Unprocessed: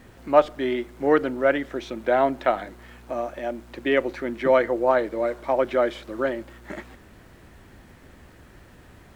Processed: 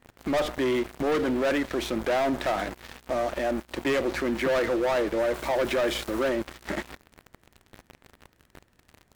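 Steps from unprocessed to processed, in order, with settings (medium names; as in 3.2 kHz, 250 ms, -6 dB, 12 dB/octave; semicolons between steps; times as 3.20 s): 5.34–6.29 s: treble shelf 4.8 kHz +9 dB; waveshaping leveller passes 5; peak limiter -14 dBFS, peak gain reduction 10.5 dB; trim -7 dB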